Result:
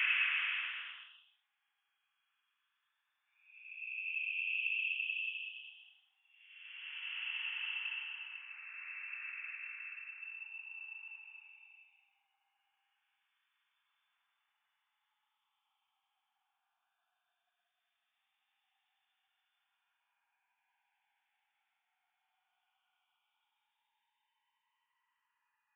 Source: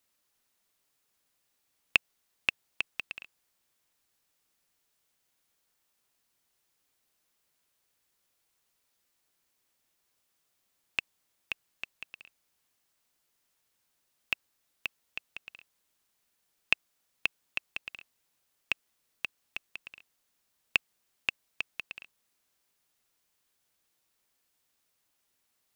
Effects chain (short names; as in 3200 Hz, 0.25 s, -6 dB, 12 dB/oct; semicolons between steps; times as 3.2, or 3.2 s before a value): sine-wave speech; Paulstretch 25×, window 0.10 s, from 19.57; gain +5.5 dB